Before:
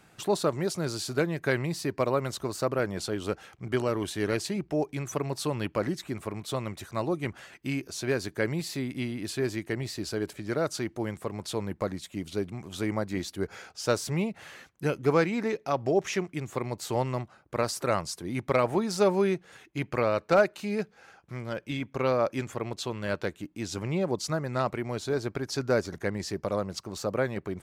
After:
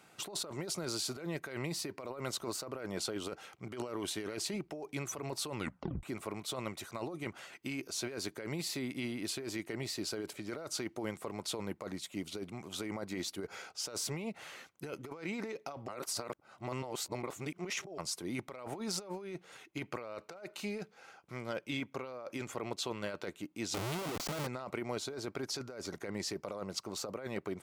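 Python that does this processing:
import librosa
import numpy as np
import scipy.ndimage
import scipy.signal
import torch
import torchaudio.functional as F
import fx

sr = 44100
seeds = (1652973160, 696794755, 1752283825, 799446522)

y = fx.schmitt(x, sr, flips_db=-41.0, at=(23.74, 24.47))
y = fx.edit(y, sr, fx.tape_stop(start_s=5.56, length_s=0.47),
    fx.reverse_span(start_s=15.88, length_s=2.1), tone=tone)
y = fx.highpass(y, sr, hz=310.0, slope=6)
y = fx.notch(y, sr, hz=1700.0, q=9.3)
y = fx.over_compress(y, sr, threshold_db=-35.0, ratio=-1.0)
y = y * librosa.db_to_amplitude(-4.5)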